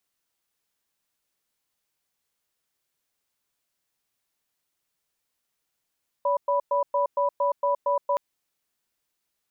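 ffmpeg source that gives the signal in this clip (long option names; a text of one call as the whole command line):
ffmpeg -f lavfi -i "aevalsrc='0.0708*(sin(2*PI*571*t)+sin(2*PI*986*t))*clip(min(mod(t,0.23),0.12-mod(t,0.23))/0.005,0,1)':duration=1.92:sample_rate=44100" out.wav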